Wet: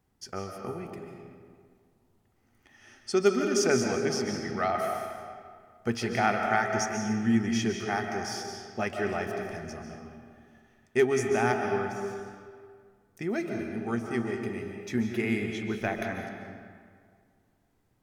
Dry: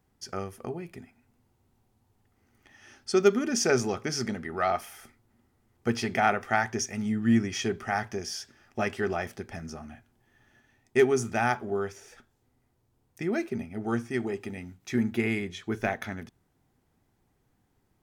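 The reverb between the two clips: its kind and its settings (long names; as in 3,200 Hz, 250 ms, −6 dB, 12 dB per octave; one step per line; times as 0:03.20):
comb and all-pass reverb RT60 2 s, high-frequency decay 0.65×, pre-delay 105 ms, DRR 3 dB
level −2 dB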